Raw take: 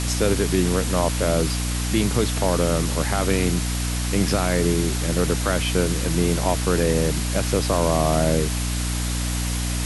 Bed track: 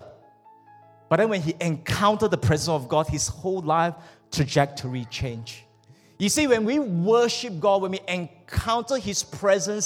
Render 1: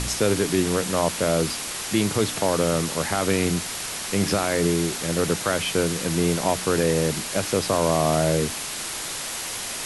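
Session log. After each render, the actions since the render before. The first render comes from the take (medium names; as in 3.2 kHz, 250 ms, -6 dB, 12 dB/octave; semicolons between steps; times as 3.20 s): de-hum 60 Hz, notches 5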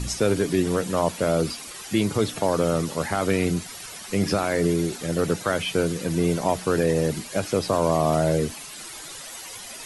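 noise reduction 12 dB, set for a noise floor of -31 dBFS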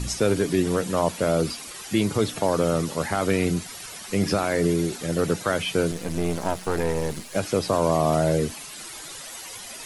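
5.91–7.35 s: partial rectifier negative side -12 dB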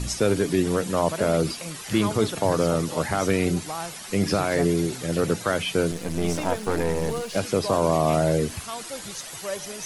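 add bed track -12 dB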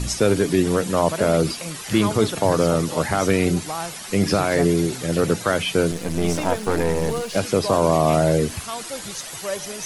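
trim +3.5 dB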